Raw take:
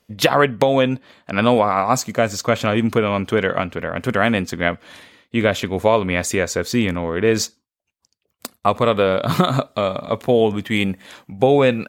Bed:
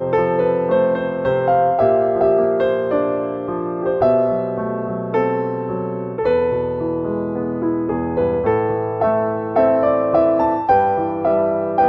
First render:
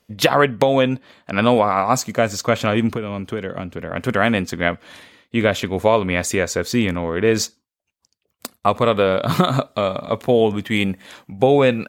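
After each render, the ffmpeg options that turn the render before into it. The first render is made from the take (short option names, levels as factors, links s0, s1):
-filter_complex "[0:a]asettb=1/sr,asplit=3[s0][s1][s2];[s0]atrim=end=2.894[s3];[s1]atrim=start=2.89:end=3.91,asetpts=PTS-STARTPTS,afade=t=in:d=0.004:c=qsin,afade=t=out:st=1.016:d=0.004:c=qsin,acrossover=split=420|1100|4100[s4][s5][s6][s7];[s4]acompressor=threshold=0.0501:ratio=3[s8];[s5]acompressor=threshold=0.0158:ratio=3[s9];[s6]acompressor=threshold=0.01:ratio=3[s10];[s7]acompressor=threshold=0.00316:ratio=3[s11];[s8][s9][s10][s11]amix=inputs=4:normalize=0[s12];[s2]atrim=start=3.906[s13];[s3][s12]acrossfade=d=0.004:c1=hsin:c2=qsin[s14];[s14][s13]acrossfade=d=0.004:c1=qsin:c2=hsin"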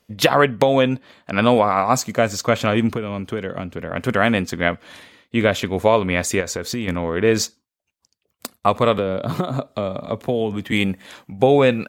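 -filter_complex "[0:a]asettb=1/sr,asplit=3[s0][s1][s2];[s0]atrim=end=6.404[s3];[s1]atrim=start=6.4:end=6.88,asetpts=PTS-STARTPTS,afade=t=in:d=0.004:c=qsin,afade=t=out:st=0.476:d=0.004:c=qsin,acompressor=threshold=0.0891:ratio=6:attack=3.2:release=140:knee=1:detection=peak[s4];[s2]atrim=start=6.876[s5];[s3][s4]acrossfade=d=0.004:c1=hsin:c2=qsin[s6];[s6][s5]acrossfade=d=0.004:c1=qsin:c2=hsin,asettb=1/sr,asplit=3[s7][s8][s9];[s7]atrim=end=8.984[s10];[s8]atrim=start=8.98:end=10.72,asetpts=PTS-STARTPTS,afade=t=in:d=0.004:c=qsin,afade=t=out:st=1.736:d=0.004:c=qsin,acrossover=split=320|770[s11][s12][s13];[s11]acompressor=threshold=0.0708:ratio=4[s14];[s12]acompressor=threshold=0.0631:ratio=4[s15];[s13]acompressor=threshold=0.02:ratio=4[s16];[s14][s15][s16]amix=inputs=3:normalize=0[s17];[s9]atrim=start=10.716[s18];[s10][s17]acrossfade=d=0.004:c1=hsin:c2=qsin[s19];[s19][s18]acrossfade=d=0.004:c1=qsin:c2=hsin"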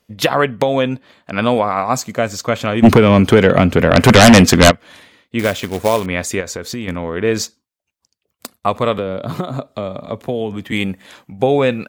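-filter_complex "[0:a]asplit=3[s0][s1][s2];[s0]afade=t=out:st=2.82:d=0.02[s3];[s1]aeval=exprs='0.841*sin(PI/2*5.01*val(0)/0.841)':c=same,afade=t=in:st=2.82:d=0.02,afade=t=out:st=4.7:d=0.02[s4];[s2]afade=t=in:st=4.7:d=0.02[s5];[s3][s4][s5]amix=inputs=3:normalize=0,asettb=1/sr,asplit=3[s6][s7][s8];[s6]atrim=end=5.394[s9];[s7]atrim=start=5.39:end=6.06,asetpts=PTS-STARTPTS,afade=t=in:d=0.004:c=qsin,afade=t=out:st=0.666:d=0.004:c=qsin,acrusher=bits=3:mode=log:mix=0:aa=0.000001[s10];[s8]atrim=start=6.056[s11];[s9][s10]acrossfade=d=0.004:c1=hsin:c2=qsin[s12];[s12][s11]acrossfade=d=0.004:c1=qsin:c2=hsin"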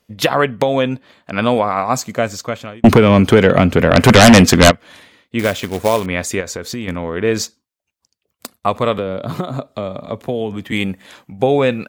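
-filter_complex "[0:a]asplit=2[s0][s1];[s0]atrim=end=2.84,asetpts=PTS-STARTPTS,afade=t=out:st=2.24:d=0.6[s2];[s1]atrim=start=2.84,asetpts=PTS-STARTPTS,afade=t=in:d=0.004:c=hsin[s3];[s2][s3]concat=n=2:v=0:a=1"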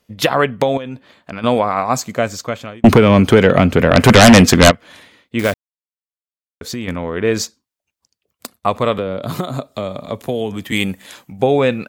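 -filter_complex "[0:a]asettb=1/sr,asplit=3[s0][s1][s2];[s0]atrim=end=0.774[s3];[s1]atrim=start=0.77:end=1.44,asetpts=PTS-STARTPTS,afade=t=in:d=0.004:c=qsin,afade=t=out:st=0.666:d=0.004:c=qsin,acompressor=threshold=0.0708:ratio=16:attack=3.2:release=140:knee=1:detection=peak[s4];[s2]atrim=start=1.436[s5];[s3][s4]acrossfade=d=0.004:c1=hsin:c2=qsin[s6];[s6][s5]acrossfade=d=0.004:c1=qsin:c2=hsin,asettb=1/sr,asplit=3[s7][s8][s9];[s7]atrim=end=9.224[s10];[s8]atrim=start=9.22:end=11.41,asetpts=PTS-STARTPTS,afade=t=in:d=0.004:c=qsin,afade=t=out:st=2.186:d=0.004:c=qsin,highshelf=f=4700:g=10.5[s11];[s9]atrim=start=11.406[s12];[s10][s11]acrossfade=d=0.004:c1=hsin:c2=qsin[s13];[s13][s12]acrossfade=d=0.004:c1=qsin:c2=hsin,asplit=3[s14][s15][s16];[s14]atrim=end=5.54,asetpts=PTS-STARTPTS,afade=t=out:st=5.536:d=0.004:c=hsin[s17];[s15]atrim=start=5.54:end=6.61,asetpts=PTS-STARTPTS,volume=0[s18];[s16]atrim=start=6.61,asetpts=PTS-STARTPTS,afade=t=in:d=0.004:c=hsin[s19];[s17][s18][s19]concat=n=3:v=0:a=1"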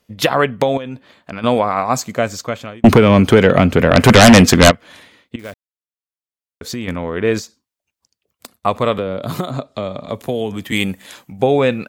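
-filter_complex "[0:a]asettb=1/sr,asplit=3[s0][s1][s2];[s0]atrim=end=7.394[s3];[s1]atrim=start=7.39:end=8.54,asetpts=PTS-STARTPTS,afade=t=in:d=0.004:c=qsin,afade=t=out:st=1.146:d=0.004:c=qsin,acompressor=threshold=0.0282:ratio=3:attack=3.2:release=140:knee=1:detection=peak[s4];[s2]atrim=start=8.536[s5];[s3][s4]acrossfade=d=0.004:c1=hsin:c2=qsin[s6];[s6][s5]acrossfade=d=0.004:c1=qsin:c2=hsin,asettb=1/sr,asplit=3[s7][s8][s9];[s7]atrim=end=9.504[s10];[s8]atrim=start=9.5:end=10.09,asetpts=PTS-STARTPTS,afade=t=in:d=0.004:c=qsin,afade=t=out:st=0.586:d=0.004:c=qsin,lowpass=6100[s11];[s9]atrim=start=10.086[s12];[s10][s11]acrossfade=d=0.004:c1=hsin:c2=qsin[s13];[s13][s12]acrossfade=d=0.004:c1=qsin:c2=hsin,asplit=2[s14][s15];[s14]atrim=end=5.36,asetpts=PTS-STARTPTS,afade=t=out:st=5.356:d=0.004:c=hsin:silence=0.105925[s16];[s15]atrim=start=5.36,asetpts=PTS-STARTPTS,afade=t=in:d=1.37:silence=0.105925[s17];[s16][s17]concat=n=2:v=0:a=1"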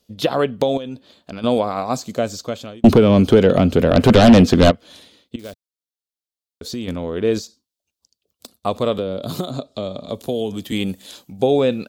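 -filter_complex "[0:a]acrossover=split=2800[s0][s1];[s1]acompressor=threshold=0.0282:ratio=4:attack=1:release=60[s2];[s0][s2]amix=inputs=2:normalize=0,equalizer=f=125:t=o:w=1:g=-5,equalizer=f=1000:t=o:w=1:g=-6,equalizer=f=2000:t=o:w=1:g=-12,equalizer=f=4000:t=o:w=1:g=6"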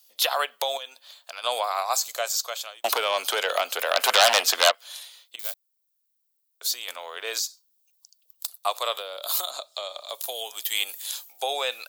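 -af "highpass=f=740:w=0.5412,highpass=f=740:w=1.3066,aemphasis=mode=production:type=bsi"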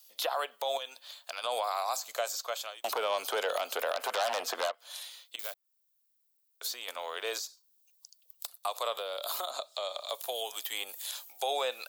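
-filter_complex "[0:a]acrossover=split=1300|2900[s0][s1][s2];[s0]acompressor=threshold=0.0447:ratio=4[s3];[s1]acompressor=threshold=0.00631:ratio=4[s4];[s2]acompressor=threshold=0.0126:ratio=4[s5];[s3][s4][s5]amix=inputs=3:normalize=0,alimiter=limit=0.0891:level=0:latency=1:release=61"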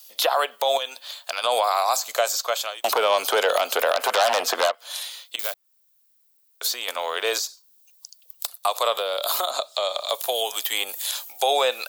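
-af "volume=3.55"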